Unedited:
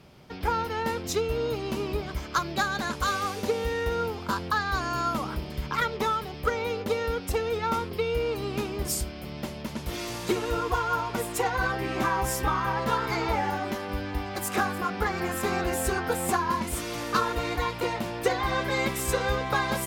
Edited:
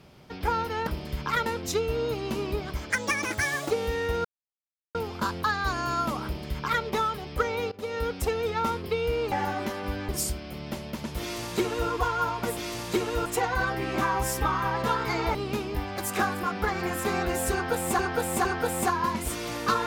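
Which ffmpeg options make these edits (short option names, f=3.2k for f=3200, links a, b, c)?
-filter_complex "[0:a]asplit=15[a][b][c][d][e][f][g][h][i][j][k][l][m][n][o];[a]atrim=end=0.872[p];[b]atrim=start=5.318:end=5.912[q];[c]atrim=start=0.868:end=2.314[r];[d]atrim=start=2.31:end=3.48,asetpts=PTS-STARTPTS,asetrate=63945,aresample=44100,atrim=end_sample=35584,asetpts=PTS-STARTPTS[s];[e]atrim=start=3.476:end=4.02,asetpts=PTS-STARTPTS,afade=t=out:st=0.54:d=0.004:c=hsin,apad=pad_dur=0.7[t];[f]atrim=start=4.02:end=6.79,asetpts=PTS-STARTPTS,afade=t=in:d=0.004:c=hsin,afade=t=out:st=2.766:d=0.004:c=hsin:silence=0.0891251[u];[g]atrim=start=6.79:end=8.392,asetpts=PTS-STARTPTS,afade=t=in:d=0.32:silence=0.0891251[v];[h]atrim=start=13.368:end=14.142[w];[i]atrim=start=8.798:end=11.282[x];[j]atrim=start=9.918:end=10.612[y];[k]atrim=start=11.278:end=13.372[z];[l]atrim=start=8.388:end=8.802[aa];[m]atrim=start=14.138:end=16.372[ab];[n]atrim=start=15.908:end=16.372[ac];[o]atrim=start=15.908[ad];[p][q]acrossfade=d=0.004:c1=hsin:c2=hsin[ae];[ae][r]acrossfade=d=0.004:c1=hsin:c2=hsin[af];[af][s]acrossfade=d=0.004:c1=hsin:c2=hsin[ag];[t][u][v]concat=n=3:v=0:a=1[ah];[ag][ah]acrossfade=d=0.004:c1=hsin:c2=hsin[ai];[ai][w]acrossfade=d=0.004:c1=hsin:c2=hsin[aj];[aj][x]acrossfade=d=0.004:c1=hsin:c2=hsin[ak];[ak][y]acrossfade=d=0.004:c1=hsin:c2=hsin[al];[al][z]acrossfade=d=0.004:c1=hsin:c2=hsin[am];[am][aa]acrossfade=d=0.004:c1=hsin:c2=hsin[an];[an][ab]acrossfade=d=0.004:c1=hsin:c2=hsin[ao];[ao][ac]acrossfade=d=0.004:c1=hsin:c2=hsin[ap];[ap][ad]acrossfade=d=0.004:c1=hsin:c2=hsin"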